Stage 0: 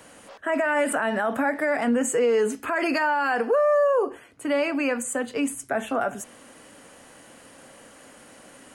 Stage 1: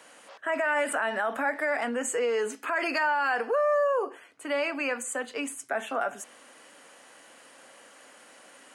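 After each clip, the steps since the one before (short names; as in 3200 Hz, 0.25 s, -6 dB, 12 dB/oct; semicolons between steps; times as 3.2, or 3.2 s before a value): weighting filter A; gain -2.5 dB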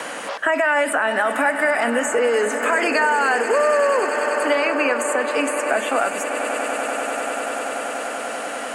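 vibrato 3.6 Hz 25 cents; swelling echo 97 ms, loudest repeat 8, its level -17 dB; three-band squash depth 70%; gain +8 dB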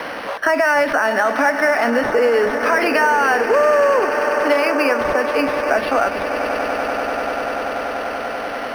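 decimation joined by straight lines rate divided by 6×; gain +3.5 dB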